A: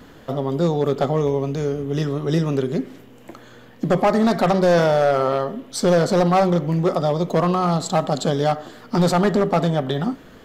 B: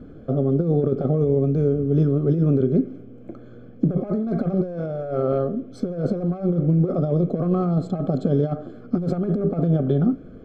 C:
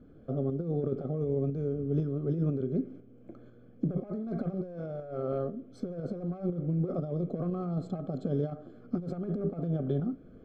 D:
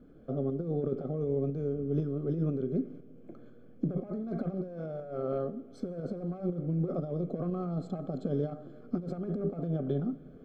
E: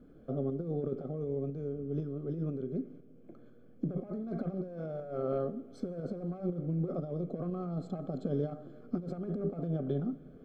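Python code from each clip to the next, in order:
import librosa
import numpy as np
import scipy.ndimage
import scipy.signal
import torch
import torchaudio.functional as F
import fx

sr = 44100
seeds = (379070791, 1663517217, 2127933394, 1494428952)

y1 = fx.over_compress(x, sr, threshold_db=-20.0, ratio=-0.5)
y1 = scipy.signal.lfilter(np.full(47, 1.0 / 47), 1.0, y1)
y1 = y1 * librosa.db_to_amplitude(3.0)
y2 = fx.tremolo_shape(y1, sr, shape='saw_up', hz=2.0, depth_pct=45)
y2 = y2 * librosa.db_to_amplitude(-9.0)
y3 = fx.peak_eq(y2, sr, hz=96.0, db=-14.0, octaves=0.45)
y3 = fx.rev_schroeder(y3, sr, rt60_s=3.1, comb_ms=38, drr_db=20.0)
y4 = fx.rider(y3, sr, range_db=10, speed_s=2.0)
y4 = y4 * librosa.db_to_amplitude(-3.0)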